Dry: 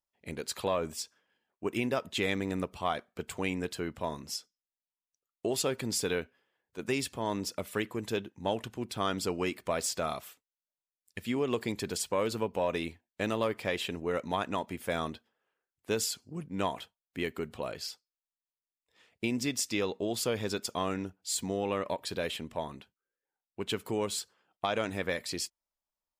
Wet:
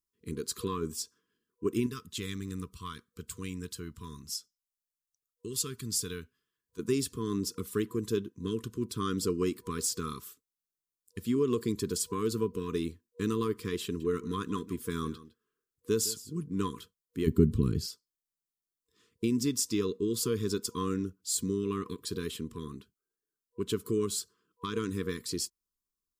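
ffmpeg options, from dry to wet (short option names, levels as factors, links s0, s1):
-filter_complex "[0:a]asettb=1/sr,asplit=3[s0][s1][s2];[s0]atrim=end=1.864[s3];[s1]atrim=start=1.86:end=6.79,asetpts=PTS-STARTPTS,afade=t=in:d=0.004:c=qsin,afade=t=out:st=4.926:d=0.004:c=qsin,equalizer=f=420:t=o:w=2.5:g=-12.5[s4];[s2]atrim=start=6.786[s5];[s3][s4]acrossfade=d=0.004:c1=hsin:c2=qsin[s6];[s6][s5]acrossfade=d=0.004:c1=qsin:c2=hsin,asettb=1/sr,asplit=3[s7][s8][s9];[s7]atrim=end=13.844[s10];[s8]atrim=start=13.84:end=16.71,asetpts=PTS-STARTPTS,afade=t=in:d=0.004:c=qsin,afade=t=out:st=2.866:d=0.004:c=qsin,aecho=1:1:159:0.141,atrim=end_sample=126567[s11];[s9]atrim=start=16.706[s12];[s10][s11]acrossfade=d=0.004:c1=hsin:c2=qsin[s13];[s13][s12]acrossfade=d=0.004:c1=qsin:c2=hsin,asplit=3[s14][s15][s16];[s14]afade=t=out:st=17.26:d=0.02[s17];[s15]asubboost=boost=10:cutoff=240,afade=t=in:st=17.26:d=0.02,afade=t=out:st=17.85:d=0.02[s18];[s16]afade=t=in:st=17.85:d=0.02[s19];[s17][s18][s19]amix=inputs=3:normalize=0,afftfilt=real='re*(1-between(b*sr/4096,480,980))':imag='im*(1-between(b*sr/4096,480,980))':win_size=4096:overlap=0.75,equalizer=f=2200:w=0.94:g=-15,volume=1.58"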